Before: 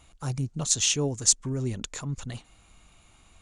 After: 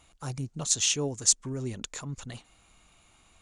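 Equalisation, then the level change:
low-shelf EQ 180 Hz −6 dB
−1.5 dB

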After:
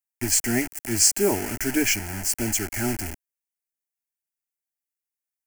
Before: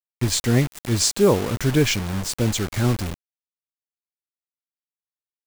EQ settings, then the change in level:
high-shelf EQ 2,300 Hz +10 dB
phaser with its sweep stopped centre 750 Hz, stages 8
−2.0 dB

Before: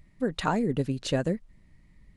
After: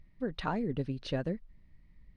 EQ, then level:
Savitzky-Golay smoothing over 15 samples
low-shelf EQ 62 Hz +8 dB
−7.0 dB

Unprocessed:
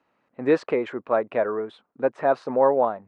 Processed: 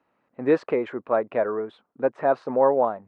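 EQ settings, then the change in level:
high-shelf EQ 3,400 Hz −8.5 dB
0.0 dB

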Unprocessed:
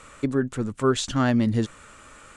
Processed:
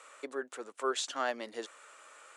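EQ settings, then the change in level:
high-pass filter 440 Hz 24 dB per octave
parametric band 710 Hz +2 dB 0.39 octaves
−6.5 dB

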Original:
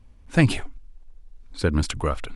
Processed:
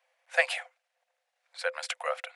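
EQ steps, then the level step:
Chebyshev high-pass with heavy ripple 500 Hz, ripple 9 dB
+2.5 dB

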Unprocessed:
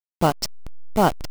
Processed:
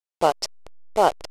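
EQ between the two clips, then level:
Bessel low-pass filter 9,400 Hz, order 4
low shelf with overshoot 320 Hz −13 dB, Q 1.5
parametric band 1,500 Hz −3 dB 0.78 octaves
0.0 dB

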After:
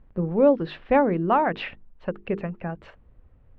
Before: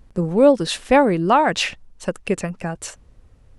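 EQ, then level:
low-pass filter 3,500 Hz 12 dB per octave
high-frequency loss of the air 390 metres
mains-hum notches 50/100/150/200/250/300/350/400/450 Hz
−3.5 dB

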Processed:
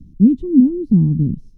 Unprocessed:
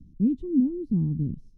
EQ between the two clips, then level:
dynamic equaliser 200 Hz, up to +4 dB, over −34 dBFS, Q 1.6
+8.5 dB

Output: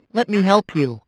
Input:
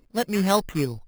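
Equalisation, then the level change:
band-pass filter 130–3,700 Hz
+6.5 dB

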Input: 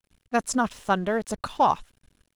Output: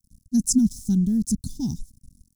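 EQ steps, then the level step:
elliptic band-stop filter 240–5,500 Hz, stop band 40 dB
low-shelf EQ 300 Hz +6 dB
high-shelf EQ 8,400 Hz +5.5 dB
+6.5 dB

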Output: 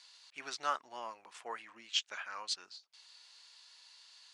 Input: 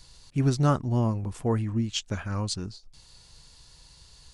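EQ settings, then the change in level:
band-pass filter 660–2,500 Hz
first difference
+12.0 dB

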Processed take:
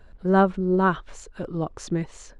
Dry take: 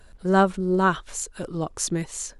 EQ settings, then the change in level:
head-to-tape spacing loss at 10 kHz 23 dB
+1.5 dB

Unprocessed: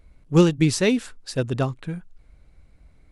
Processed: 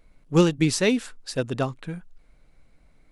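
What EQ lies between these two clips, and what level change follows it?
parametric band 67 Hz −12.5 dB 1.6 octaves
parametric band 370 Hz −2.5 dB 0.22 octaves
0.0 dB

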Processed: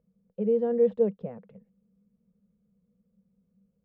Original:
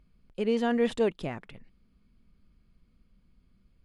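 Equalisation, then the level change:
pair of resonant band-passes 310 Hz, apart 1.3 octaves
high-frequency loss of the air 67 metres
+7.0 dB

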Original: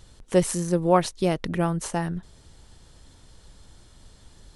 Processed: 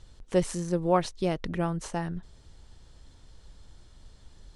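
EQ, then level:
high-frequency loss of the air 64 metres
bass and treble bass −3 dB, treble +3 dB
low-shelf EQ 100 Hz +9 dB
−4.5 dB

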